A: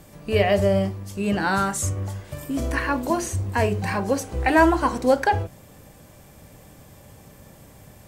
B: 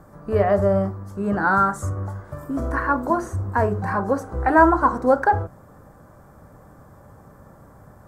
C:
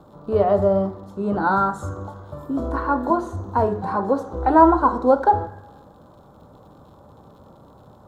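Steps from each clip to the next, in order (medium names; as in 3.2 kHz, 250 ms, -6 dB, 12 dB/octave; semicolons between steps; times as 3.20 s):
resonant high shelf 1.9 kHz -12 dB, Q 3
crackle 95 per s -46 dBFS; reverberation RT60 1.1 s, pre-delay 3 ms, DRR 14 dB; trim -7 dB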